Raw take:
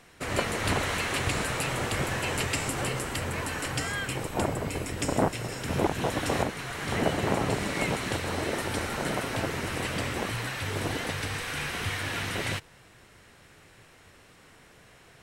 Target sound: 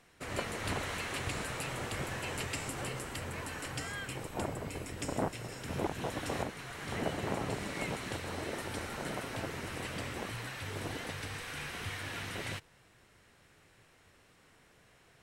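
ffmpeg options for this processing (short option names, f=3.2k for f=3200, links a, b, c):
-af "volume=-8.5dB"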